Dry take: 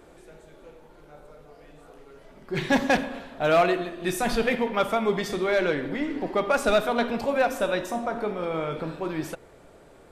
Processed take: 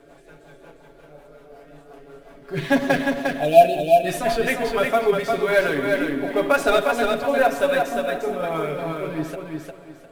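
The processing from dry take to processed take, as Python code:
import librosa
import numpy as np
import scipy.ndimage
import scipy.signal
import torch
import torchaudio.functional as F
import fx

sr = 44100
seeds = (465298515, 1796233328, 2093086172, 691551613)

p1 = fx.low_shelf(x, sr, hz=190.0, db=-5.5)
p2 = p1 + 0.83 * np.pad(p1, (int(7.1 * sr / 1000.0), 0))[:len(p1)]
p3 = fx.small_body(p2, sr, hz=(660.0, 1600.0), ring_ms=100, db=10)
p4 = fx.sample_hold(p3, sr, seeds[0], rate_hz=12000.0, jitter_pct=20)
p5 = p3 + (p4 * 10.0 ** (-9.0 / 20.0))
p6 = fx.rotary_switch(p5, sr, hz=5.5, then_hz=1.0, switch_at_s=4.42)
p7 = fx.spec_erase(p6, sr, start_s=3.21, length_s=0.82, low_hz=840.0, high_hz=2300.0)
y = p7 + fx.echo_feedback(p7, sr, ms=353, feedback_pct=26, wet_db=-4, dry=0)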